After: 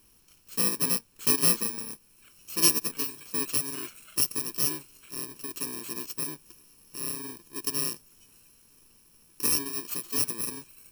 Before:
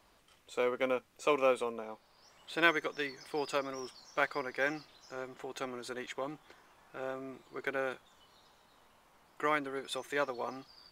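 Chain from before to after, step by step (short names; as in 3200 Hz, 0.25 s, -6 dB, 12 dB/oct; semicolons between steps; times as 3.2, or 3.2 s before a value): FFT order left unsorted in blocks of 64 samples; gain +5.5 dB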